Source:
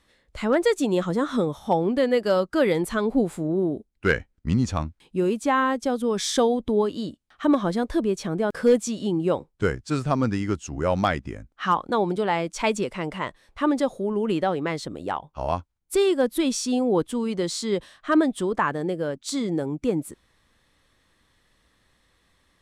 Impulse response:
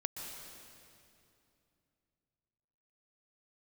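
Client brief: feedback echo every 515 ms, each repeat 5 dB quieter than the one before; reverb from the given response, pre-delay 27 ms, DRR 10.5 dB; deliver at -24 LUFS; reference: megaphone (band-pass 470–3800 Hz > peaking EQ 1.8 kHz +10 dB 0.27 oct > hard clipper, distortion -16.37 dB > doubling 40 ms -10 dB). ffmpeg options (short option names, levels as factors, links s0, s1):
-filter_complex "[0:a]aecho=1:1:515|1030|1545|2060|2575|3090|3605:0.562|0.315|0.176|0.0988|0.0553|0.031|0.0173,asplit=2[s0][s1];[1:a]atrim=start_sample=2205,adelay=27[s2];[s1][s2]afir=irnorm=-1:irlink=0,volume=0.282[s3];[s0][s3]amix=inputs=2:normalize=0,highpass=470,lowpass=3800,equalizer=f=1800:t=o:w=0.27:g=10,asoftclip=type=hard:threshold=0.158,asplit=2[s4][s5];[s5]adelay=40,volume=0.316[s6];[s4][s6]amix=inputs=2:normalize=0,volume=1.26"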